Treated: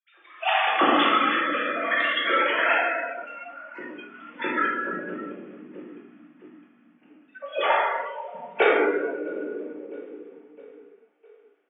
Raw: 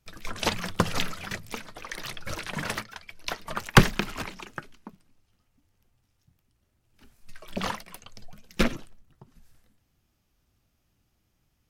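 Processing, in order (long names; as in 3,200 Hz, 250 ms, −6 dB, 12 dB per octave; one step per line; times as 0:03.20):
three sine waves on the formant tracks
high-pass filter 190 Hz 24 dB per octave
notch filter 1,000 Hz, Q 8.4
repeating echo 659 ms, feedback 54%, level −20 dB
0:02.72–0:04.34: downward compressor 8 to 1, threshold −42 dBFS, peak gain reduction 29 dB
convolution reverb RT60 2.4 s, pre-delay 6 ms, DRR −8 dB
automatic gain control gain up to 8.5 dB
noise reduction from a noise print of the clip's start 16 dB
level −6 dB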